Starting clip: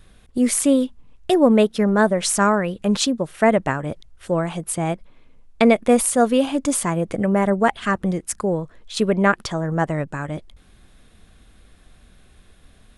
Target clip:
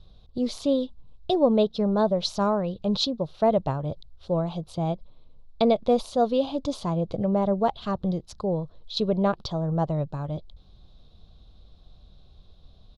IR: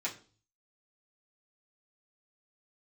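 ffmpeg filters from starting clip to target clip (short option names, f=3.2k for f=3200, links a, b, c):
-af "firequalizer=gain_entry='entry(140,0);entry(240,-9);entry(590,-3);entry(1100,-8);entry(1800,-25);entry(3900,2);entry(8300,-29)':delay=0.05:min_phase=1"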